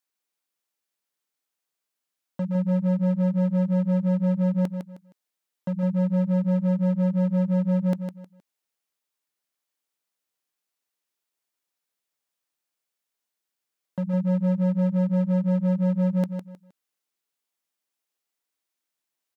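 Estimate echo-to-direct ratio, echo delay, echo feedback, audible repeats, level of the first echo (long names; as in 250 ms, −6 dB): −6.5 dB, 156 ms, 28%, 3, −7.0 dB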